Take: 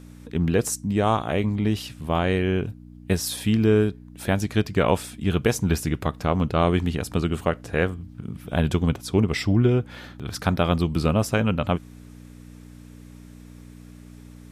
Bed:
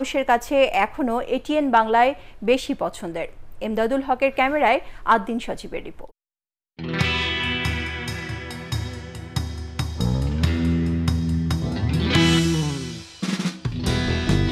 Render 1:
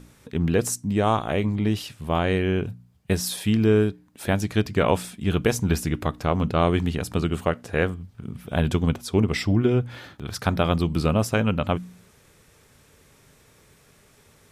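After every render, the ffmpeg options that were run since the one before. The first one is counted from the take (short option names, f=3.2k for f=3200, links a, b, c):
-af "bandreject=f=60:t=h:w=4,bandreject=f=120:t=h:w=4,bandreject=f=180:t=h:w=4,bandreject=f=240:t=h:w=4,bandreject=f=300:t=h:w=4"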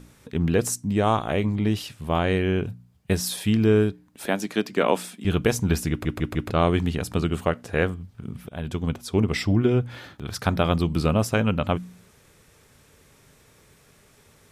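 -filter_complex "[0:a]asettb=1/sr,asplit=3[a][b][c];[a]atrim=end=4.264[d];[b]atrim=start=4.26:end=5.25,asetpts=PTS-STARTPTS,afade=t=in:d=0.004:c=qsin,afade=t=out:st=0.986:d=0.004:c=qsin,highpass=f=200:w=0.5412,highpass=f=200:w=1.3066[e];[c]atrim=start=5.246[f];[d][e]acrossfade=d=0.004:c1=hsin:c2=qsin[g];[g][f]acrossfade=d=0.004:c1=qsin:c2=hsin,asplit=6[h][i][j][k][l][m];[h]atrim=end=6.052[n];[i]atrim=start=5.898:end=6.052[o];[j]atrim=start=5.898:end=6.052[p];[k]atrim=start=5.898:end=6.052[q];[l]atrim=start=6.498:end=8.49,asetpts=PTS-STARTPTS,afade=t=out:st=1.988:d=0.004:c=hsin:silence=0.177828[r];[m]atrim=start=8.49,asetpts=PTS-STARTPTS,afade=t=in:d=1.05:c=qsin:silence=0.177828[s];[n][o]acrossfade=d=0.004:c1=hsin:c2=hsin[t];[t][p]acrossfade=d=0.004:c1=hsin:c2=hsin[u];[u][q]acrossfade=d=0.004:c1=hsin:c2=hsin[v];[r][s]concat=n=2:v=0:a=1[w];[v][w]acrossfade=d=0.004:c1=hsin:c2=hsin"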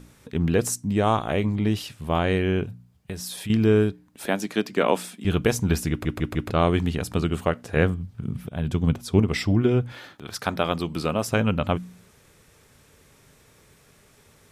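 -filter_complex "[0:a]asettb=1/sr,asplit=3[a][b][c];[a]atrim=end=2.644[d];[b]atrim=start=2.64:end=3.5,asetpts=PTS-STARTPTS,afade=t=in:d=0.004:c=qsin,afade=t=out:st=0.856:d=0.004:c=qsin,acompressor=threshold=-33dB:ratio=2.5:attack=3.2:release=140:knee=1:detection=peak[e];[c]atrim=start=3.496[f];[d][e]acrossfade=d=0.004:c1=hsin:c2=qsin[g];[g][f]acrossfade=d=0.004:c1=qsin:c2=hsin,asettb=1/sr,asplit=3[h][i][j];[h]atrim=end=7.764[k];[i]atrim=start=7.76:end=9.2,asetpts=PTS-STARTPTS,afade=t=in:d=0.004:c=qsin,afade=t=out:st=1.436:d=0.004:c=qsin,equalizer=f=130:t=o:w=1.9:g=6.5[l];[j]atrim=start=9.196[m];[k][l]acrossfade=d=0.004:c1=hsin:c2=qsin[n];[n][m]acrossfade=d=0.004:c1=qsin:c2=hsin,asettb=1/sr,asplit=3[o][p][q];[o]atrim=end=9.924[r];[p]atrim=start=9.92:end=11.28,asetpts=PTS-STARTPTS,afade=t=in:d=0.004:c=qsin,afade=t=out:st=1.356:d=0.004:c=qsin,highpass=f=310:p=1[s];[q]atrim=start=11.276[t];[r][s]acrossfade=d=0.004:c1=hsin:c2=qsin[u];[u][t]acrossfade=d=0.004:c1=qsin:c2=hsin"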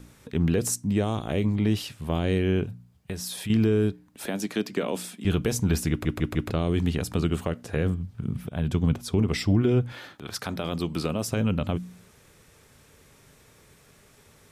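-filter_complex "[0:a]alimiter=limit=-13dB:level=0:latency=1:release=14,acrossover=split=490|3000[a][b][c];[b]acompressor=threshold=-34dB:ratio=6[d];[a][d][c]amix=inputs=3:normalize=0"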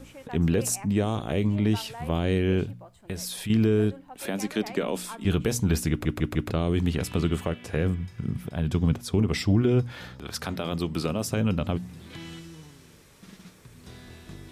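-filter_complex "[1:a]volume=-24dB[a];[0:a][a]amix=inputs=2:normalize=0"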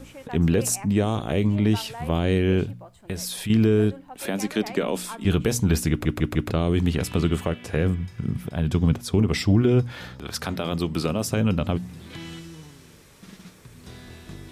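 -af "volume=3dB"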